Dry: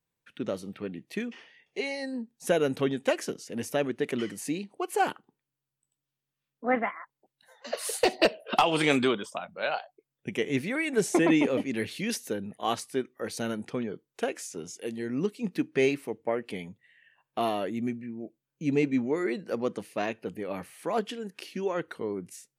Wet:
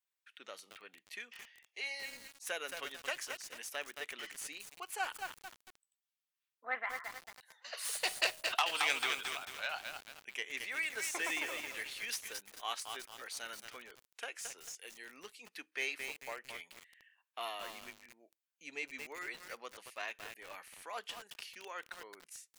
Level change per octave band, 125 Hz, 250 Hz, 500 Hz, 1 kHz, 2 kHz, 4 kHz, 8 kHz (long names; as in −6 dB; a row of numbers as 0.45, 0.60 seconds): below −30 dB, −29.0 dB, −20.0 dB, −10.5 dB, −4.0 dB, −3.0 dB, −3.5 dB